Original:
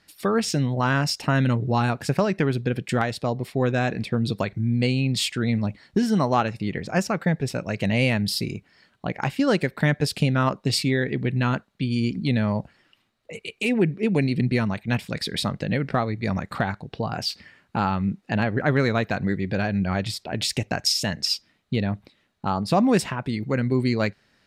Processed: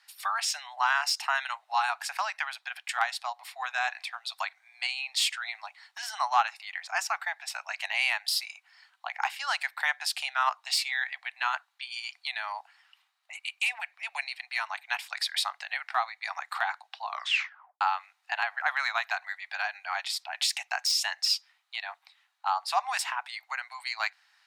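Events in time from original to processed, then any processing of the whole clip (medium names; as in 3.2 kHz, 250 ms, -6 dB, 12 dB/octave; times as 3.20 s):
17.01 s: tape stop 0.80 s
whole clip: de-esser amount 45%; steep high-pass 750 Hz 72 dB/octave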